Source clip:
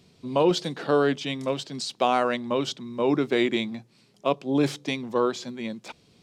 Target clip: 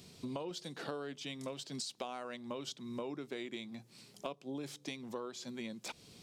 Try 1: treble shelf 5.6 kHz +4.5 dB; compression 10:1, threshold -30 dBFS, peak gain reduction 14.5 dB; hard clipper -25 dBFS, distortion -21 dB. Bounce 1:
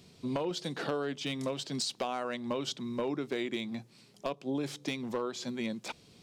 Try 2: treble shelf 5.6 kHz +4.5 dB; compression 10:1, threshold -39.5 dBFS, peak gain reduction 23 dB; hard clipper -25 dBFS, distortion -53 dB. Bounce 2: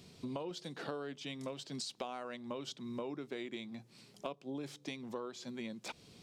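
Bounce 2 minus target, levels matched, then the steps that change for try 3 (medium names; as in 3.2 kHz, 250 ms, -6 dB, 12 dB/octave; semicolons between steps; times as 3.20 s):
8 kHz band -2.5 dB
change: treble shelf 5.6 kHz +11.5 dB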